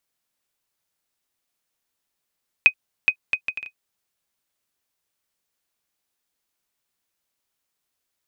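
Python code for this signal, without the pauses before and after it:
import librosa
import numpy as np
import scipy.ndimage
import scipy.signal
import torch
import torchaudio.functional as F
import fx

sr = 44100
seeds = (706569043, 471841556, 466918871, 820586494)

y = fx.bouncing_ball(sr, first_gap_s=0.42, ratio=0.6, hz=2510.0, decay_ms=78.0, level_db=-2.0)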